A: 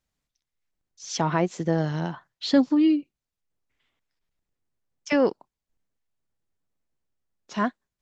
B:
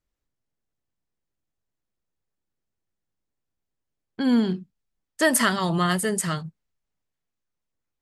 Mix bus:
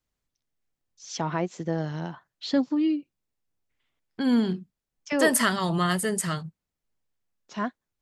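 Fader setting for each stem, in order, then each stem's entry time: -4.5 dB, -2.0 dB; 0.00 s, 0.00 s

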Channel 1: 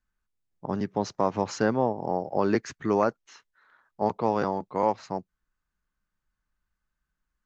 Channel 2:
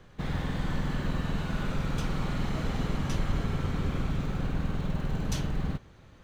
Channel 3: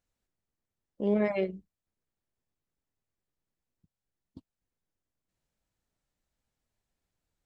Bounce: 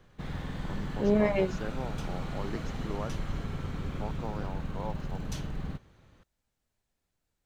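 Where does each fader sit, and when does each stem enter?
-14.5 dB, -5.5 dB, +2.0 dB; 0.00 s, 0.00 s, 0.00 s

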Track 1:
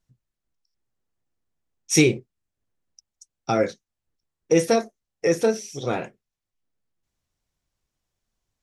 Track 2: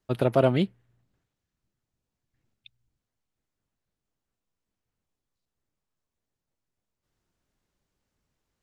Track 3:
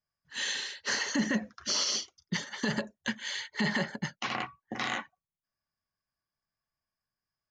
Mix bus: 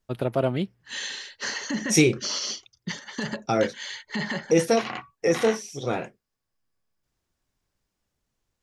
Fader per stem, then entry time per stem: -1.5 dB, -3.0 dB, 0.0 dB; 0.00 s, 0.00 s, 0.55 s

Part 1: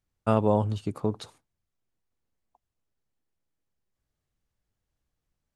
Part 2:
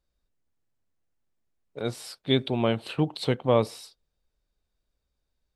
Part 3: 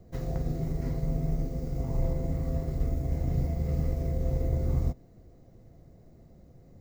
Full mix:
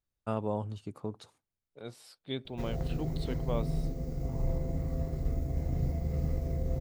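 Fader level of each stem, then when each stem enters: -10.0 dB, -13.5 dB, -3.0 dB; 0.00 s, 0.00 s, 2.45 s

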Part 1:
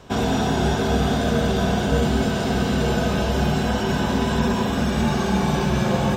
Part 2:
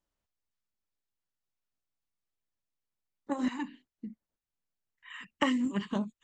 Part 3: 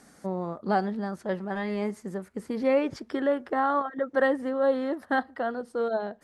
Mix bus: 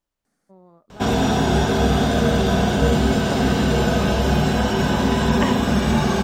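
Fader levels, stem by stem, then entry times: +2.5 dB, +3.0 dB, -18.5 dB; 0.90 s, 0.00 s, 0.25 s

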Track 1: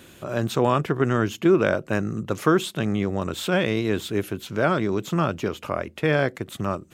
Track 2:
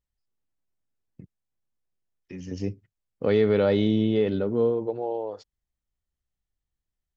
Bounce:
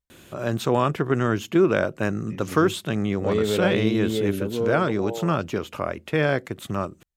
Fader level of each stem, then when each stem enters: -0.5 dB, -2.5 dB; 0.10 s, 0.00 s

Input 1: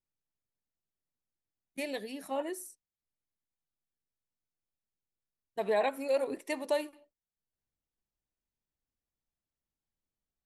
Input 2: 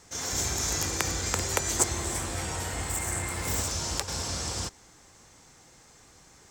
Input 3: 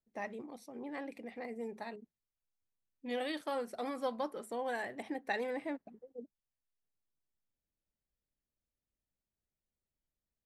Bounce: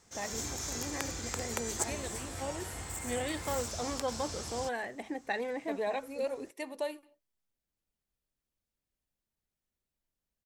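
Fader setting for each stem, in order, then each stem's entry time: -5.0 dB, -9.0 dB, +1.5 dB; 0.10 s, 0.00 s, 0.00 s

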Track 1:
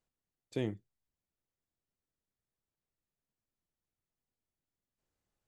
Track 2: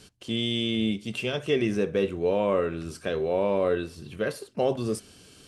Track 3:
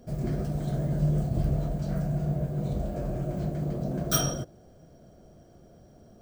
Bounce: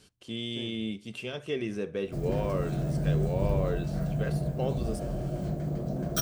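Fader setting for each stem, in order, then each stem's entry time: -9.0 dB, -7.5 dB, -1.5 dB; 0.00 s, 0.00 s, 2.05 s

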